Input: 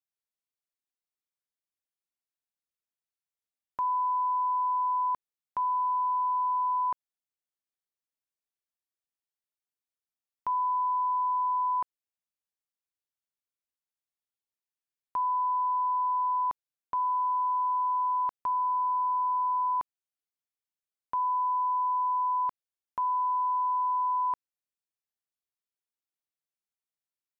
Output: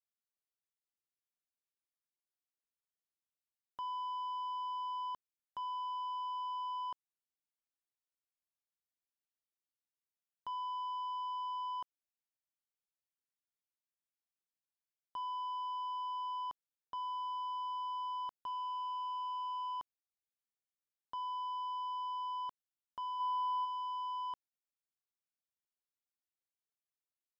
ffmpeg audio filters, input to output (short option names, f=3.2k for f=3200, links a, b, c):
-filter_complex "[0:a]asoftclip=type=tanh:threshold=-29dB,asplit=3[a][b][c];[a]afade=t=out:st=23.19:d=0.02[d];[b]equalizer=f=530:w=0.99:g=12.5,afade=t=in:st=23.19:d=0.02,afade=t=out:st=23.64:d=0.02[e];[c]afade=t=in:st=23.64:d=0.02[f];[d][e][f]amix=inputs=3:normalize=0,volume=-8dB"